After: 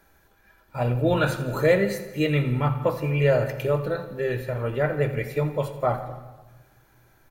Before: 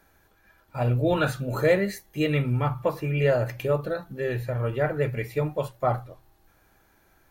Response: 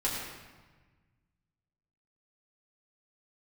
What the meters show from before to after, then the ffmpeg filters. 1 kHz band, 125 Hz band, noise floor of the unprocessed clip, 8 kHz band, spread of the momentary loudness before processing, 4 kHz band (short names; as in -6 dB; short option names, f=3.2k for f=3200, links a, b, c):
+1.0 dB, +1.5 dB, -63 dBFS, n/a, 7 LU, +1.5 dB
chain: -filter_complex "[0:a]aecho=1:1:84|168|252|336|420|504:0.178|0.101|0.0578|0.0329|0.0188|0.0107,asplit=2[a][b];[1:a]atrim=start_sample=2205[c];[b][c]afir=irnorm=-1:irlink=0,volume=-16.5dB[d];[a][d]amix=inputs=2:normalize=0"